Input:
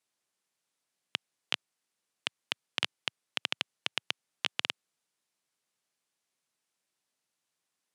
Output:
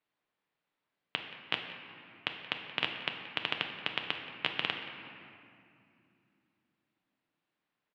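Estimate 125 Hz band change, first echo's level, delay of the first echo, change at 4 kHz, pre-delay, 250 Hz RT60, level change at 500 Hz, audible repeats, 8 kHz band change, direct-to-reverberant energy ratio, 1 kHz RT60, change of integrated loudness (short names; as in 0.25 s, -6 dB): +5.5 dB, -17.5 dB, 0.177 s, -1.5 dB, 7 ms, 4.0 s, +3.5 dB, 1, under -15 dB, 3.5 dB, 2.4 s, -0.5 dB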